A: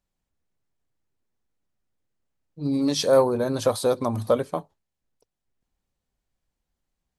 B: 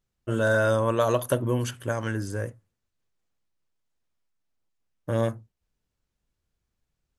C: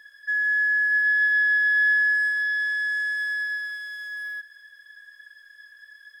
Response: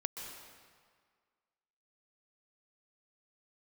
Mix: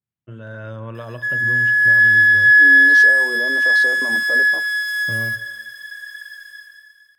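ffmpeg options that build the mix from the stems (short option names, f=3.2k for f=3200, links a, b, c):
-filter_complex "[0:a]highpass=f=320:w=0.5412,highpass=f=320:w=1.3066,afwtdn=0.0141,volume=-4dB[a];[1:a]highpass=f=98:w=0.5412,highpass=f=98:w=1.3066,acompressor=threshold=-29dB:ratio=2,lowpass=f=2.6k:t=q:w=1.6,volume=-16dB,asplit=2[b][c];[c]volume=-12dB[d];[2:a]dynaudnorm=f=230:g=7:m=11.5dB,adelay=950,volume=-10.5dB,asplit=2[e][f];[f]volume=-4dB[g];[a][b]amix=inputs=2:normalize=0,bass=f=250:g=13,treble=f=4k:g=-2,alimiter=level_in=5.5dB:limit=-24dB:level=0:latency=1,volume=-5.5dB,volume=0dB[h];[3:a]atrim=start_sample=2205[i];[d][g]amix=inputs=2:normalize=0[j];[j][i]afir=irnorm=-1:irlink=0[k];[e][h][k]amix=inputs=3:normalize=0,aemphasis=mode=production:type=cd,dynaudnorm=f=120:g=9:m=7.5dB,adynamicequalizer=threshold=0.0891:dfrequency=2000:dqfactor=0.7:tfrequency=2000:tqfactor=0.7:attack=5:release=100:ratio=0.375:range=2:mode=cutabove:tftype=highshelf"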